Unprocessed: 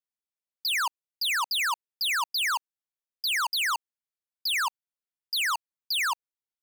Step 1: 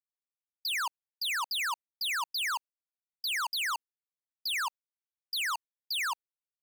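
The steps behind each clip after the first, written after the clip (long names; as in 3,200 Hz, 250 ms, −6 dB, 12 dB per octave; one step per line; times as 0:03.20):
noise gate with hold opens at −27 dBFS
level −5 dB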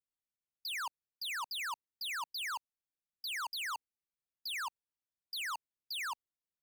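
low-shelf EQ 390 Hz +11 dB
level −7.5 dB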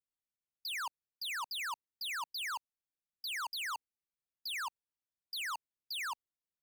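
no processing that can be heard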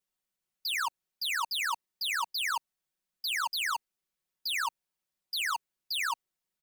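comb filter 5.4 ms, depth 82%
level +5 dB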